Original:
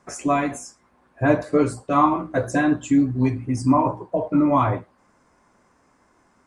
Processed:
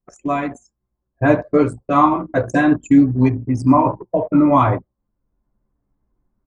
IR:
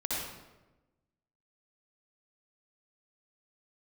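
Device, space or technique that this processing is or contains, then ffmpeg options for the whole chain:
voice memo with heavy noise removal: -af "anlmdn=39.8,dynaudnorm=f=430:g=3:m=4.47,volume=0.891"

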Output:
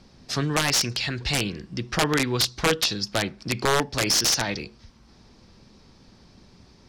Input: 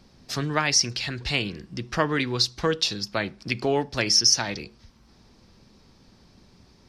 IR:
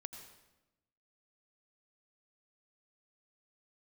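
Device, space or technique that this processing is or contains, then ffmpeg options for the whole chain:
overflowing digital effects unit: -af "aeval=exprs='(mod(5.62*val(0)+1,2)-1)/5.62':c=same,lowpass=10000,volume=1.33"

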